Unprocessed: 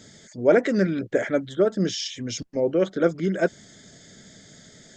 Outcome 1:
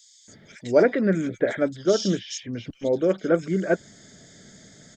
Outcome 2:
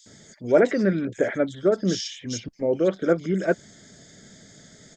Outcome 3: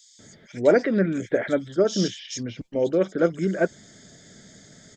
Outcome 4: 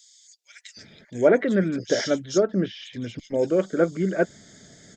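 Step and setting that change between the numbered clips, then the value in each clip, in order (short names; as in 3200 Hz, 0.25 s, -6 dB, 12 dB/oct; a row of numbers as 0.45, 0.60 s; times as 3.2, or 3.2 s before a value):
bands offset in time, time: 280, 60, 190, 770 ms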